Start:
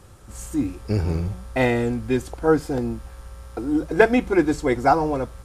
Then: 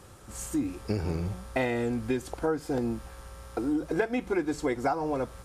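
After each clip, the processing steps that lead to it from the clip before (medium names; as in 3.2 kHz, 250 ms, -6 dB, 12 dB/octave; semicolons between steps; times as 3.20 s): bass shelf 97 Hz -9.5 dB; compression 6:1, threshold -25 dBFS, peak gain reduction 15 dB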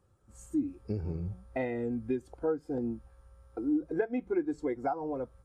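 spectral contrast expander 1.5:1; trim -3.5 dB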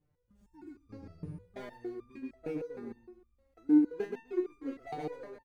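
median filter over 41 samples; feedback delay 127 ms, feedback 27%, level -4.5 dB; resonator arpeggio 6.5 Hz 150–1200 Hz; trim +8.5 dB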